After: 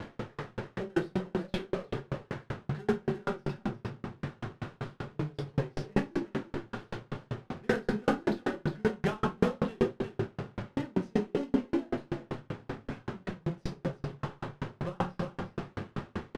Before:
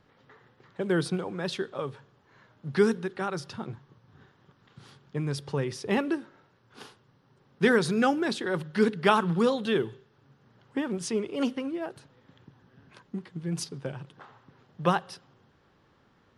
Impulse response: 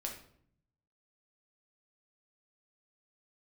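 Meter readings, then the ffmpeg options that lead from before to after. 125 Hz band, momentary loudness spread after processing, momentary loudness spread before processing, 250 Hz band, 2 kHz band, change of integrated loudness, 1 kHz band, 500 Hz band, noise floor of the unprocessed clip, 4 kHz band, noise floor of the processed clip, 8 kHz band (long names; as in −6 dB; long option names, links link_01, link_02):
0.0 dB, 10 LU, 16 LU, −3.0 dB, −6.5 dB, −6.0 dB, −6.0 dB, −4.5 dB, −65 dBFS, −9.0 dB, −63 dBFS, below −10 dB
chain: -filter_complex "[0:a]aeval=exprs='val(0)+0.5*0.0531*sgn(val(0))':channel_layout=same,highpass=57,highshelf=frequency=9800:gain=4.5,asplit=2[link_01][link_02];[link_02]acrusher=samples=38:mix=1:aa=0.000001,volume=-7dB[link_03];[link_01][link_03]amix=inputs=2:normalize=0,flanger=delay=3.4:depth=8.8:regen=49:speed=1.4:shape=sinusoidal,adynamicsmooth=sensitivity=2.5:basefreq=1700,aecho=1:1:354:0.398[link_04];[1:a]atrim=start_sample=2205,asetrate=27783,aresample=44100[link_05];[link_04][link_05]afir=irnorm=-1:irlink=0,aeval=exprs='val(0)*pow(10,-39*if(lt(mod(5.2*n/s,1),2*abs(5.2)/1000),1-mod(5.2*n/s,1)/(2*abs(5.2)/1000),(mod(5.2*n/s,1)-2*abs(5.2)/1000)/(1-2*abs(5.2)/1000))/20)':channel_layout=same"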